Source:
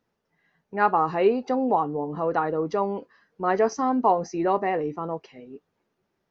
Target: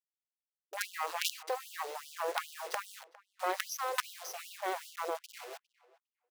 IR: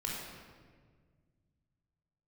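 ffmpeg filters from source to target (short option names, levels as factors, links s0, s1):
-filter_complex "[0:a]acrossover=split=230|3000[s0][s1][s2];[s1]acompressor=threshold=0.0158:ratio=3[s3];[s0][s3][s2]amix=inputs=3:normalize=0,acrusher=bits=5:dc=4:mix=0:aa=0.000001,asplit=2[s4][s5];[s5]adelay=406,lowpass=f=1900:p=1,volume=0.106,asplit=2[s6][s7];[s7]adelay=406,lowpass=f=1900:p=1,volume=0.17[s8];[s6][s8]amix=inputs=2:normalize=0[s9];[s4][s9]amix=inputs=2:normalize=0,afftfilt=real='re*gte(b*sr/1024,340*pow(2900/340,0.5+0.5*sin(2*PI*2.5*pts/sr)))':imag='im*gte(b*sr/1024,340*pow(2900/340,0.5+0.5*sin(2*PI*2.5*pts/sr)))':win_size=1024:overlap=0.75,volume=1.78"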